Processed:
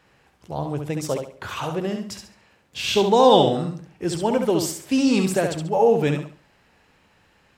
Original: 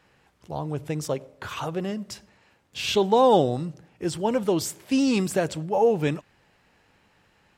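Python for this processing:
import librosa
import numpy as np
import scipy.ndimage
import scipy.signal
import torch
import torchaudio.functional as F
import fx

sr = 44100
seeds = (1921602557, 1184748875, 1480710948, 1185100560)

p1 = fx.peak_eq(x, sr, hz=fx.line((3.12, 7700.0), (3.67, 1000.0)), db=10.0, octaves=0.85, at=(3.12, 3.67), fade=0.02)
p2 = p1 + fx.echo_feedback(p1, sr, ms=69, feedback_pct=30, wet_db=-5.5, dry=0)
y = F.gain(torch.from_numpy(p2), 2.0).numpy()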